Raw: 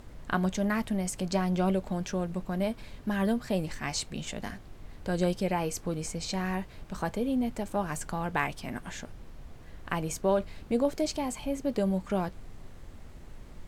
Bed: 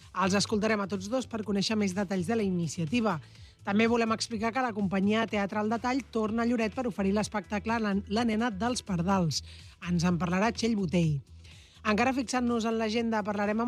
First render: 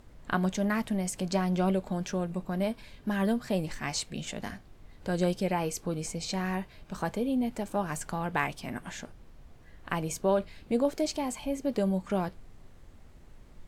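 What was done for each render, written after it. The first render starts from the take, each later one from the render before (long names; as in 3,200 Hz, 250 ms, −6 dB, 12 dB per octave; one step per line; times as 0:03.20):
noise reduction from a noise print 6 dB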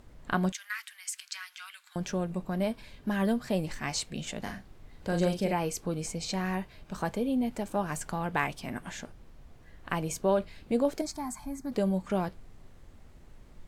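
0:00.52–0:01.96: Butterworth high-pass 1,400 Hz
0:04.41–0:05.53: double-tracking delay 41 ms −6.5 dB
0:11.01–0:11.72: phaser with its sweep stopped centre 1,200 Hz, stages 4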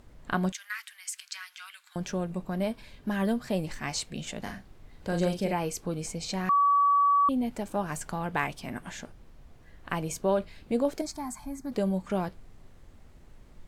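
0:06.49–0:07.29: beep over 1,140 Hz −19 dBFS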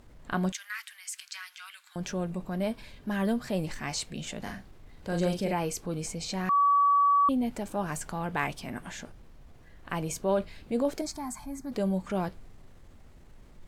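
transient designer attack −3 dB, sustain +2 dB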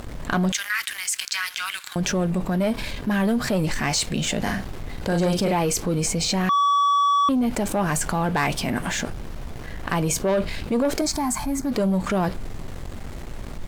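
leveller curve on the samples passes 2
envelope flattener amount 50%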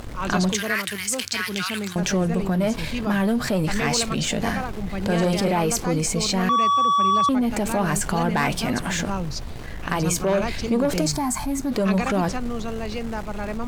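mix in bed −1.5 dB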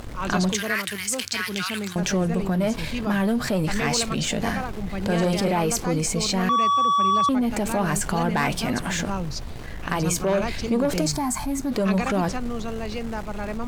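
level −1 dB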